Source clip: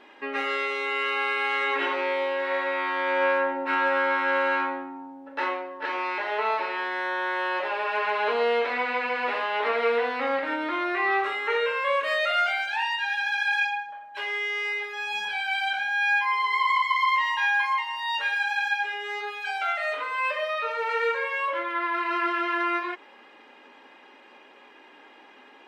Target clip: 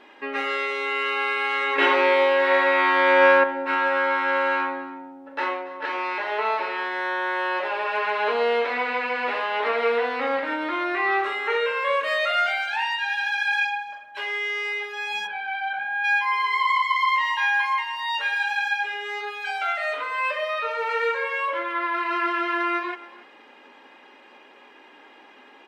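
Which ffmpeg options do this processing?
-filter_complex "[0:a]aecho=1:1:284:0.119,asettb=1/sr,asplit=3[a][b][c];[a]atrim=end=1.784[d];[b]atrim=start=1.78:end=3.44,asetpts=PTS-STARTPTS,afade=t=in:d=0.004:c=qsin,afade=t=out:st=1.656:d=0.004:c=qsin,acontrast=71[e];[c]atrim=start=3.436[f];[d][e]acrossfade=d=0.004:c1=hsin:c2=qsin[g];[g][f]acrossfade=d=0.004:c1=qsin:c2=hsin,asplit=3[h][i][j];[h]afade=t=out:st=15.26:d=0.02[k];[i]lowpass=1.7k,afade=t=in:st=15.26:d=0.02,afade=t=out:st=16.03:d=0.02[l];[j]afade=t=in:st=16.03:d=0.02[m];[k][l][m]amix=inputs=3:normalize=0,volume=1.5dB"

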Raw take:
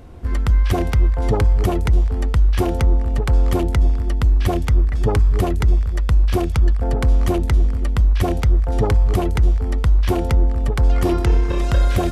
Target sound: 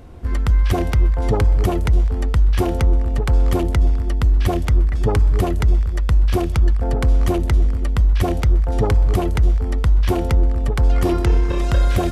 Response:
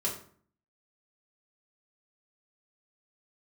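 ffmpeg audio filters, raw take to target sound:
-filter_complex "[0:a]asplit=2[a][b];[1:a]atrim=start_sample=2205,asetrate=66150,aresample=44100,adelay=125[c];[b][c]afir=irnorm=-1:irlink=0,volume=-23dB[d];[a][d]amix=inputs=2:normalize=0"

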